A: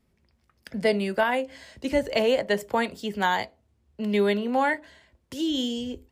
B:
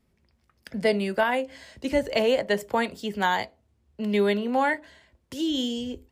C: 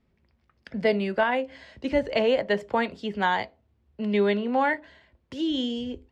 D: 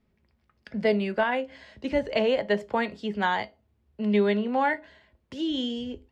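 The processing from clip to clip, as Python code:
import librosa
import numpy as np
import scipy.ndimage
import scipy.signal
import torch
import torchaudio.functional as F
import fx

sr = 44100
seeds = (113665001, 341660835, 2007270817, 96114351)

y1 = x
y2 = scipy.signal.sosfilt(scipy.signal.butter(2, 3800.0, 'lowpass', fs=sr, output='sos'), y1)
y3 = fx.comb_fb(y2, sr, f0_hz=210.0, decay_s=0.21, harmonics='all', damping=0.0, mix_pct=50)
y3 = y3 * 10.0 ** (3.5 / 20.0)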